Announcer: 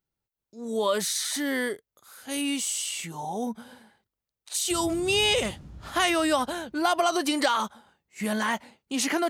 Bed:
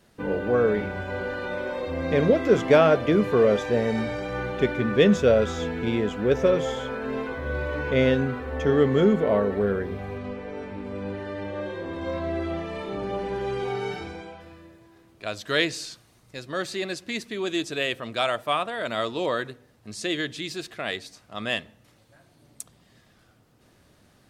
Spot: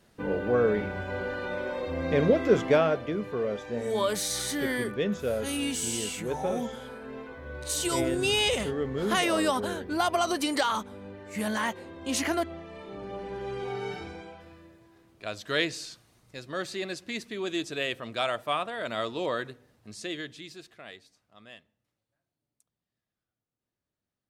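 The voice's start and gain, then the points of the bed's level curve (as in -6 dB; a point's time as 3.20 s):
3.15 s, -2.5 dB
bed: 2.56 s -2.5 dB
3.16 s -11 dB
12.65 s -11 dB
13.93 s -4 dB
19.72 s -4 dB
22.48 s -31 dB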